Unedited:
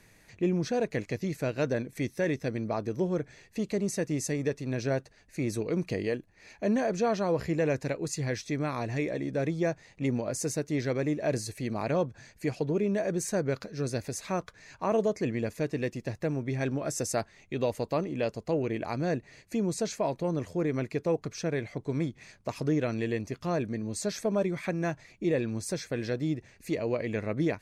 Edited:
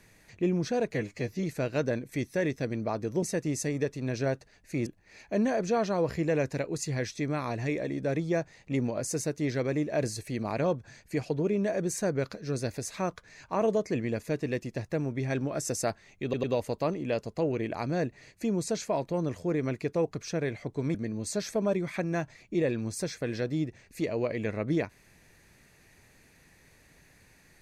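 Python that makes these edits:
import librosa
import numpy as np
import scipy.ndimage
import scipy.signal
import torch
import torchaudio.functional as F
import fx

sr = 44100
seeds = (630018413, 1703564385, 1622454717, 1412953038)

y = fx.edit(x, sr, fx.stretch_span(start_s=0.94, length_s=0.33, factor=1.5),
    fx.cut(start_s=3.06, length_s=0.81),
    fx.cut(start_s=5.51, length_s=0.66),
    fx.stutter(start_s=17.54, slice_s=0.1, count=3),
    fx.cut(start_s=22.05, length_s=1.59), tone=tone)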